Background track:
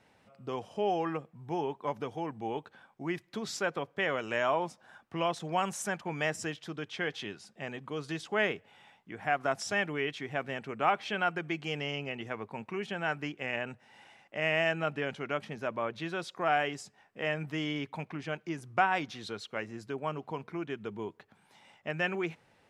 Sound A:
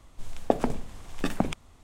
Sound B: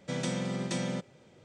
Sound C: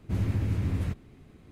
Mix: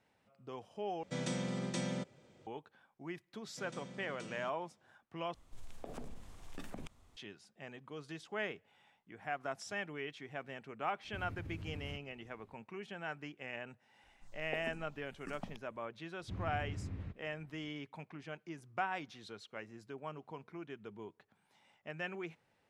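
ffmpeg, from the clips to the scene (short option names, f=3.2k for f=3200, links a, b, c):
-filter_complex "[2:a]asplit=2[a][b];[1:a]asplit=2[c][d];[3:a]asplit=2[e][f];[0:a]volume=-10dB[g];[c]acompressor=threshold=-31dB:ratio=3:attack=0.34:release=60:knee=1:detection=peak[h];[e]acompressor=threshold=-28dB:ratio=6:attack=3.2:release=140:knee=1:detection=peak[i];[d]asplit=2[j][k];[k]afreqshift=-1.8[l];[j][l]amix=inputs=2:normalize=1[m];[f]lowpass=3.4k[n];[g]asplit=3[o][p][q];[o]atrim=end=1.034[r];[a]atrim=end=1.44,asetpts=PTS-STARTPTS,volume=-5dB[s];[p]atrim=start=2.466:end=5.344[t];[h]atrim=end=1.83,asetpts=PTS-STARTPTS,volume=-10dB[u];[q]atrim=start=7.166[v];[b]atrim=end=1.44,asetpts=PTS-STARTPTS,volume=-17.5dB,afade=t=in:d=0.004:c=hsin,afade=t=out:st=1.436:d=0.004:c=hsin,adelay=153909S[w];[i]atrim=end=1.51,asetpts=PTS-STARTPTS,volume=-13.5dB,afade=t=in:d=0.004:c=hsin,afade=t=out:st=1.506:d=0.004:c=hsin,adelay=11040[x];[m]atrim=end=1.83,asetpts=PTS-STARTPTS,volume=-17.5dB,afade=t=in:d=0.004:c=hsin,afade=t=out:st=1.826:d=0.004:c=hsin,adelay=14030[y];[n]atrim=end=1.51,asetpts=PTS-STARTPTS,volume=-14.5dB,afade=t=in:d=0.004:c=hsin,afade=t=out:st=1.506:d=0.004:c=hsin,adelay=16190[z];[r][s]acrossfade=d=0.004:c1=hsin:c2=hsin[aa];[aa][t]acrossfade=d=0.004:c1=hsin:c2=hsin[ab];[ab][u]acrossfade=d=0.004:c1=hsin:c2=hsin[ac];[ac][v]acrossfade=d=0.004:c1=hsin:c2=hsin[ad];[ad][w][x][y][z]amix=inputs=5:normalize=0"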